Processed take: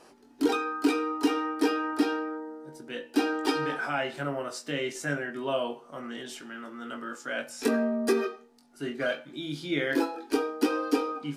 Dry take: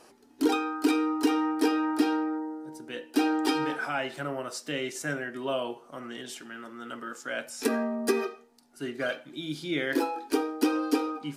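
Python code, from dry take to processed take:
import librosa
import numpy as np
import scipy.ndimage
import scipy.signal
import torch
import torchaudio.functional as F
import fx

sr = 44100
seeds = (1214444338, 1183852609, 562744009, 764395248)

y = fx.high_shelf(x, sr, hz=7400.0, db=-6.0)
y = fx.doubler(y, sr, ms=21.0, db=-6.0)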